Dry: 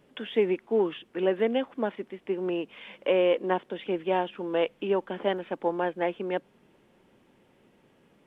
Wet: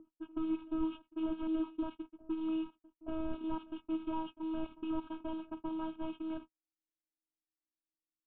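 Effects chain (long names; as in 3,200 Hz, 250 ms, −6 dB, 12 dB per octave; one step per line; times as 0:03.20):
linear delta modulator 16 kbit/s, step −39 dBFS
noise gate −35 dBFS, range −55 dB
graphic EQ with 10 bands 125 Hz −9 dB, 250 Hz +10 dB, 500 Hz −8 dB, 2,000 Hz −12 dB
phases set to zero 319 Hz
phaser with its sweep stopped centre 1,900 Hz, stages 6
backwards echo 877 ms −19 dB
low-pass that shuts in the quiet parts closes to 550 Hz, open at −33.5 dBFS
level +1 dB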